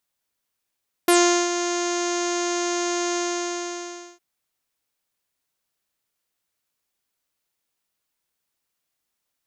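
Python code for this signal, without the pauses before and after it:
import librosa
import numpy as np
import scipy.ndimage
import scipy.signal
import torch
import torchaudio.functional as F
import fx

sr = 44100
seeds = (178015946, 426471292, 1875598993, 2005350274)

y = fx.sub_voice(sr, note=65, wave='saw', cutoff_hz=6600.0, q=6.5, env_oct=1.0, env_s=0.09, attack_ms=3.9, decay_s=0.4, sustain_db=-10, release_s=1.03, note_s=2.08, slope=24)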